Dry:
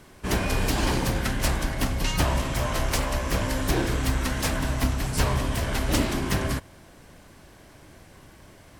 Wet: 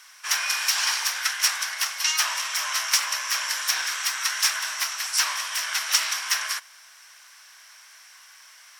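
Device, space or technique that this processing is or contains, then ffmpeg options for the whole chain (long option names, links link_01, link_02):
headphones lying on a table: -af "highpass=frequency=1200:width=0.5412,highpass=frequency=1200:width=1.3066,equalizer=frequency=5600:width_type=o:width=0.22:gain=12,volume=5.5dB"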